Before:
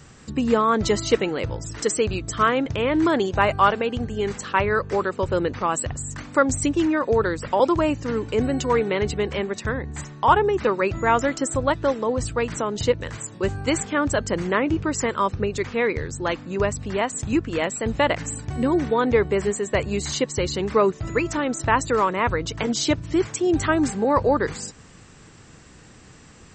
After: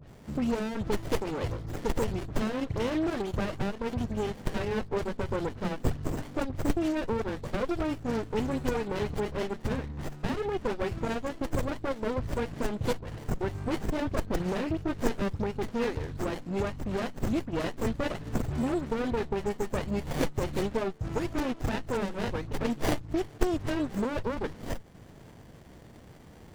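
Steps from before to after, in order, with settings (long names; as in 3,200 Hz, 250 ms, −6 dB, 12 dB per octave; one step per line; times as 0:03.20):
transient designer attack −2 dB, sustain −7 dB
parametric band 1,100 Hz +4 dB 0.45 octaves
downward compressor 10 to 1, threshold −22 dBFS, peak gain reduction 12.5 dB
high-shelf EQ 4,000 Hz +11 dB
all-pass dispersion highs, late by 81 ms, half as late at 2,200 Hz
windowed peak hold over 33 samples
level −2 dB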